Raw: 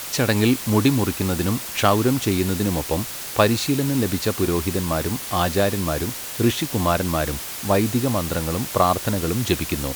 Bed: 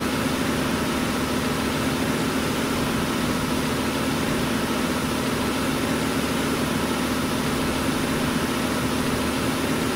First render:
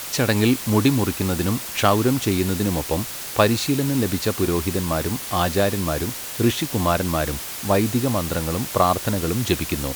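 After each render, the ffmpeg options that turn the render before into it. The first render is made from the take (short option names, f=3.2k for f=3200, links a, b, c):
-af anull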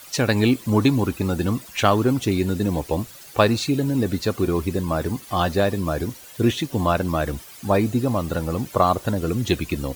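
-af "afftdn=nr=14:nf=-32"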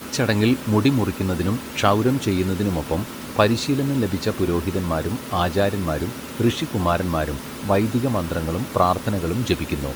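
-filter_complex "[1:a]volume=-10.5dB[a];[0:a][a]amix=inputs=2:normalize=0"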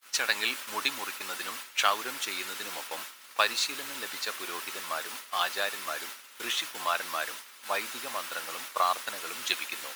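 -af "agate=range=-33dB:threshold=-24dB:ratio=3:detection=peak,highpass=1.4k"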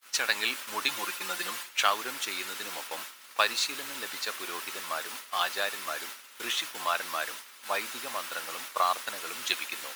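-filter_complex "[0:a]asettb=1/sr,asplit=3[a][b][c];[a]atrim=end=0.884[d];[b]atrim=start=0.88:end=1.69,asetpts=PTS-STARTPTS,afade=t=in:d=0.004:c=qsin,afade=t=out:st=0.806:d=0.004:c=qsin,aecho=1:1:5.7:0.83,atrim=end_sample=35721[e];[c]atrim=start=1.686[f];[d][e]acrossfade=d=0.004:c1=hsin:c2=qsin[g];[g][f]acrossfade=d=0.004:c1=qsin:c2=hsin"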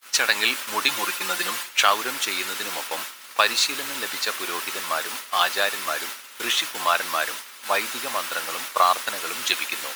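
-af "volume=8dB,alimiter=limit=-3dB:level=0:latency=1"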